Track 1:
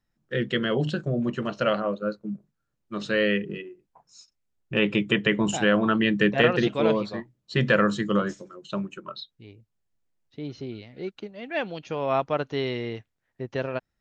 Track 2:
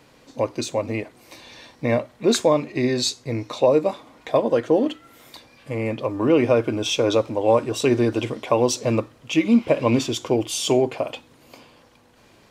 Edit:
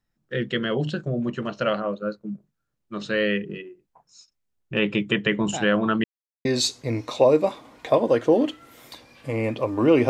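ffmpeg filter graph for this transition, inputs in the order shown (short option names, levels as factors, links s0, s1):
-filter_complex "[0:a]apad=whole_dur=10.09,atrim=end=10.09,asplit=2[s0][s1];[s0]atrim=end=6.04,asetpts=PTS-STARTPTS,afade=t=out:st=6.036:d=0.004:c=hsin[s2];[s1]atrim=start=6.04:end=6.45,asetpts=PTS-STARTPTS,volume=0[s3];[1:a]atrim=start=2.87:end=6.51,asetpts=PTS-STARTPTS,afade=t=in:d=0.004:c=hsin[s4];[s2][s3][s4]concat=n=3:v=0:a=1"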